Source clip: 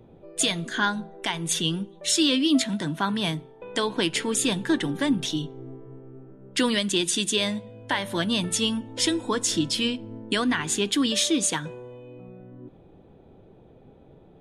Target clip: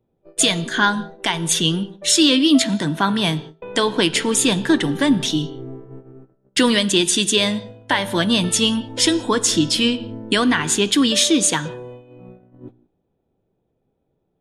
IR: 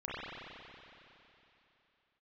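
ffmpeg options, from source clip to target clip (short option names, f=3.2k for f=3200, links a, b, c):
-filter_complex "[0:a]agate=range=-26dB:threshold=-42dB:ratio=16:detection=peak,asplit=2[a][b];[b]equalizer=f=2.2k:w=7.8:g=-12.5[c];[1:a]atrim=start_sample=2205,afade=t=out:st=0.39:d=0.01,atrim=end_sample=17640,asetrate=79380,aresample=44100[d];[c][d]afir=irnorm=-1:irlink=0,volume=-13dB[e];[a][e]amix=inputs=2:normalize=0,volume=6.5dB"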